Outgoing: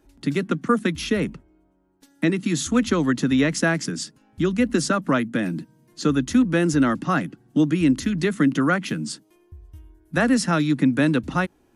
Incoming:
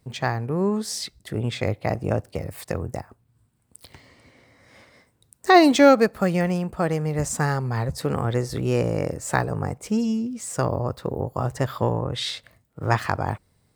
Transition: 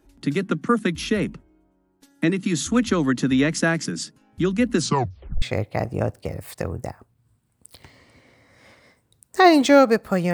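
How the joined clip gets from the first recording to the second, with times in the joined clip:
outgoing
4.77 s: tape stop 0.65 s
5.42 s: go over to incoming from 1.52 s

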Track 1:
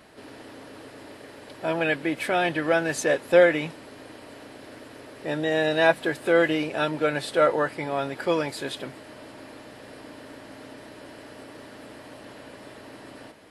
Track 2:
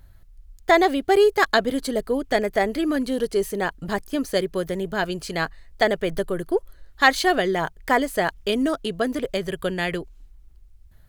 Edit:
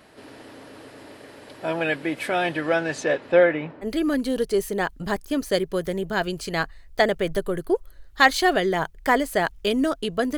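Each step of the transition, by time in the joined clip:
track 1
2.61–3.87 s: low-pass 11 kHz -> 1.2 kHz
3.84 s: go over to track 2 from 2.66 s, crossfade 0.06 s

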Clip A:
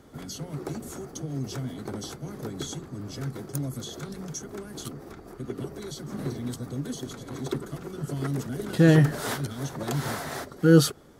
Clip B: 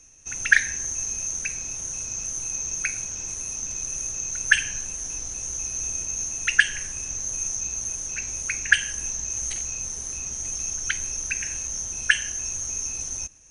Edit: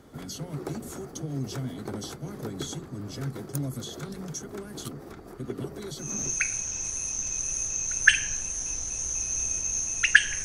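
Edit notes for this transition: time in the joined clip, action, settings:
clip A
6.16 s: go over to clip B from 2.60 s, crossfade 0.42 s equal-power

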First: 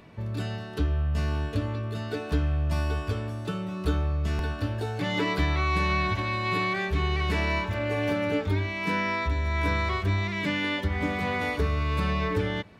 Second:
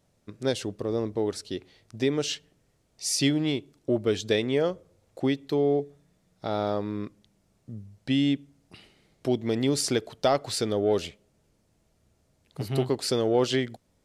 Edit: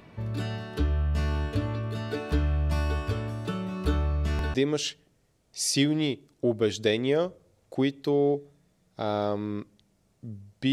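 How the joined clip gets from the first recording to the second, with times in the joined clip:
first
4.54 s: go over to second from 1.99 s

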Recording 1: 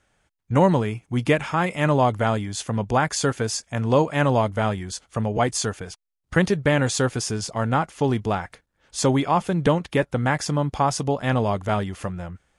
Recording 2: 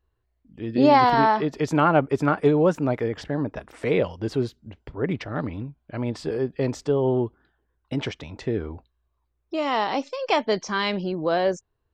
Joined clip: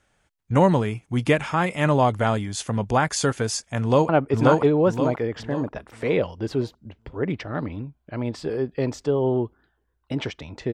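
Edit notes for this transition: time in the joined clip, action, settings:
recording 1
3.80–4.09 s: echo throw 530 ms, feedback 40%, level 0 dB
4.09 s: go over to recording 2 from 1.90 s

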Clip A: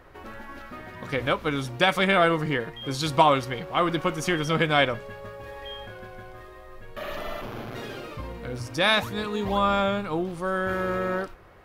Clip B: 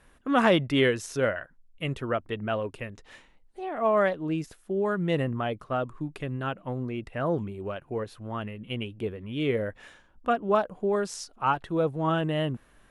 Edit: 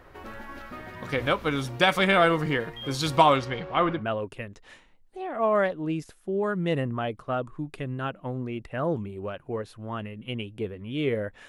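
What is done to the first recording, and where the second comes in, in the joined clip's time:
clip A
3.36–4.05 s: low-pass 7.4 kHz -> 1.8 kHz
3.98 s: go over to clip B from 2.40 s, crossfade 0.14 s

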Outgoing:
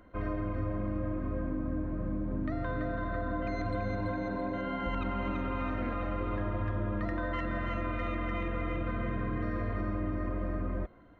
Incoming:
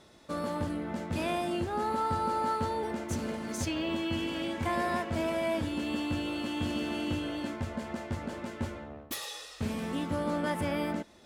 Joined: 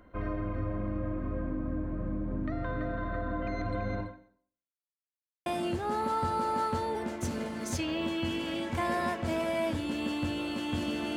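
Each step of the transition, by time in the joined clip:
outgoing
4.00–4.90 s: fade out exponential
4.90–5.46 s: mute
5.46 s: go over to incoming from 1.34 s

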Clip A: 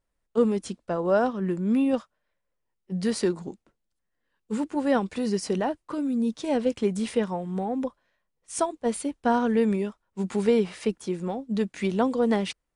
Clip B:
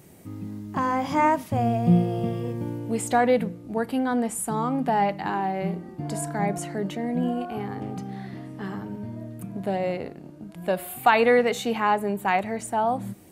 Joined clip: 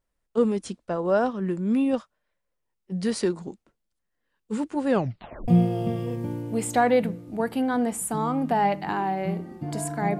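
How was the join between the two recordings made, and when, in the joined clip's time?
clip A
4.87 s: tape stop 0.61 s
5.48 s: go over to clip B from 1.85 s

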